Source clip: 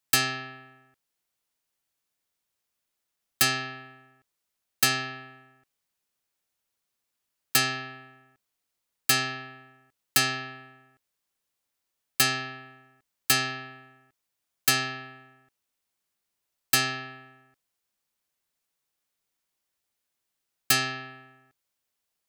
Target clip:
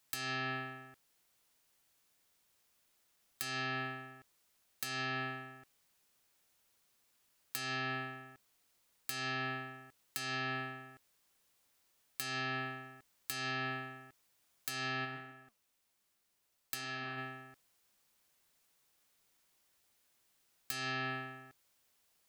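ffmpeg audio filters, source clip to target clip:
-filter_complex "[0:a]acompressor=threshold=-37dB:ratio=20,asplit=3[a][b][c];[a]afade=t=out:st=15.04:d=0.02[d];[b]flanger=delay=2.9:depth=6.6:regen=82:speed=1.3:shape=sinusoidal,afade=t=in:st=15.04:d=0.02,afade=t=out:st=17.17:d=0.02[e];[c]afade=t=in:st=17.17:d=0.02[f];[d][e][f]amix=inputs=3:normalize=0,alimiter=level_in=1dB:limit=-24dB:level=0:latency=1:release=181,volume=-1dB,volume=7.5dB"

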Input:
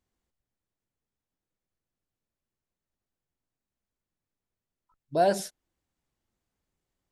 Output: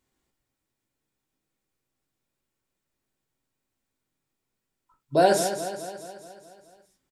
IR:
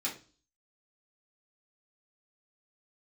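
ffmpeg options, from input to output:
-filter_complex "[0:a]aecho=1:1:212|424|636|848|1060|1272|1484:0.316|0.183|0.106|0.0617|0.0358|0.0208|0.012,asplit=2[a][b];[1:a]atrim=start_sample=2205,atrim=end_sample=3969[c];[b][c]afir=irnorm=-1:irlink=0,volume=-3.5dB[d];[a][d]amix=inputs=2:normalize=0,volume=3.5dB"

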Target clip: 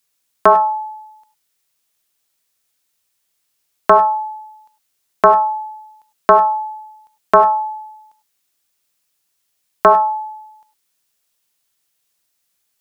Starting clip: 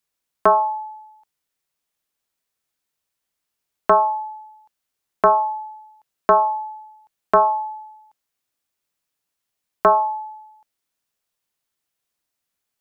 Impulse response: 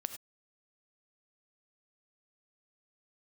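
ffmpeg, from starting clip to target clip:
-filter_complex "[0:a]asplit=2[a][b];[1:a]atrim=start_sample=2205,highshelf=f=2.2k:g=10[c];[b][c]afir=irnorm=-1:irlink=0,volume=7.5dB[d];[a][d]amix=inputs=2:normalize=0,volume=-6dB"

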